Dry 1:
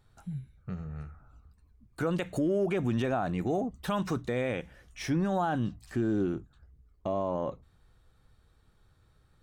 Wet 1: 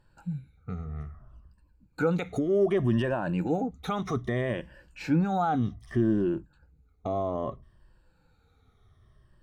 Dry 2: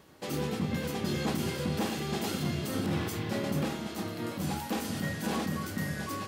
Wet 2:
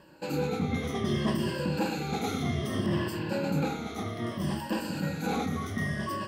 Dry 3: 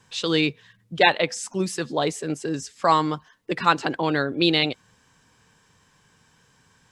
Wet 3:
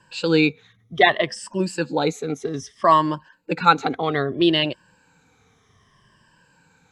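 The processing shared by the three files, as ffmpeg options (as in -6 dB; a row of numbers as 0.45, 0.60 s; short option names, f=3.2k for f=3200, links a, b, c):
-af "afftfilt=real='re*pow(10,14/40*sin(2*PI*(1.3*log(max(b,1)*sr/1024/100)/log(2)-(-0.63)*(pts-256)/sr)))':imag='im*pow(10,14/40*sin(2*PI*(1.3*log(max(b,1)*sr/1024/100)/log(2)-(-0.63)*(pts-256)/sr)))':win_size=1024:overlap=0.75,aemphasis=mode=reproduction:type=cd"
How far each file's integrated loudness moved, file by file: +3.0, +2.0, +2.5 LU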